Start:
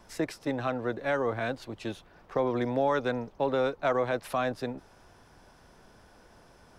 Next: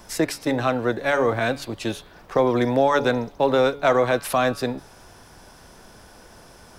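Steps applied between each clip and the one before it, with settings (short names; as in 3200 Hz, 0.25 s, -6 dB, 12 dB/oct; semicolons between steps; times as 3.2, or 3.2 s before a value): high shelf 5100 Hz +9 dB; de-hum 141.5 Hz, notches 35; gain +8.5 dB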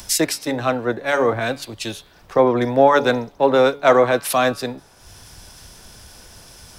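low shelf 89 Hz -8.5 dB; upward compressor, threshold -23 dBFS; three-band expander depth 100%; gain +3 dB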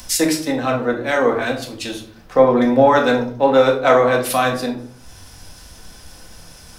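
shoebox room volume 540 m³, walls furnished, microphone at 2 m; gain -1.5 dB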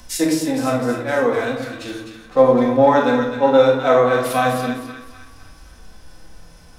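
split-band echo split 1200 Hz, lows 0.101 s, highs 0.256 s, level -7 dB; harmonic-percussive split percussive -11 dB; mismatched tape noise reduction decoder only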